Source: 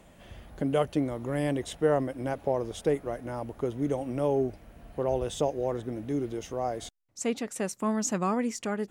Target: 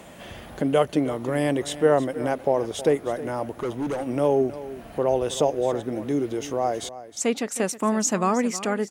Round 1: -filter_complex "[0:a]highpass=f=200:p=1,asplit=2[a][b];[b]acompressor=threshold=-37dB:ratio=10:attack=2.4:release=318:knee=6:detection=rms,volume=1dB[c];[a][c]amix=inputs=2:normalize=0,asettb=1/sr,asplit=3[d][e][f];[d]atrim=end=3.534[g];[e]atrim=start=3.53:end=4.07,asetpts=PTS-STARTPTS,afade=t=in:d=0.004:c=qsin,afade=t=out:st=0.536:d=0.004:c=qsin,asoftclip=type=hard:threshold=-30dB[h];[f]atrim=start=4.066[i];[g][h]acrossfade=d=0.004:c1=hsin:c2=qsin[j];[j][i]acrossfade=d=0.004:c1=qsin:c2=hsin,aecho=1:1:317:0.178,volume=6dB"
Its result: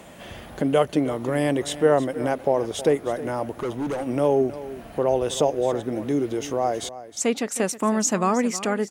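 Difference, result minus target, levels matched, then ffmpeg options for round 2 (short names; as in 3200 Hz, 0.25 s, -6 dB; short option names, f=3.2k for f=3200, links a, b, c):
compressor: peak gain reduction -6.5 dB
-filter_complex "[0:a]highpass=f=200:p=1,asplit=2[a][b];[b]acompressor=threshold=-44dB:ratio=10:attack=2.4:release=318:knee=6:detection=rms,volume=1dB[c];[a][c]amix=inputs=2:normalize=0,asettb=1/sr,asplit=3[d][e][f];[d]atrim=end=3.534[g];[e]atrim=start=3.53:end=4.07,asetpts=PTS-STARTPTS,afade=t=in:d=0.004:c=qsin,afade=t=out:st=0.536:d=0.004:c=qsin,asoftclip=type=hard:threshold=-30dB[h];[f]atrim=start=4.066[i];[g][h]acrossfade=d=0.004:c1=hsin:c2=qsin[j];[j][i]acrossfade=d=0.004:c1=qsin:c2=hsin,aecho=1:1:317:0.178,volume=6dB"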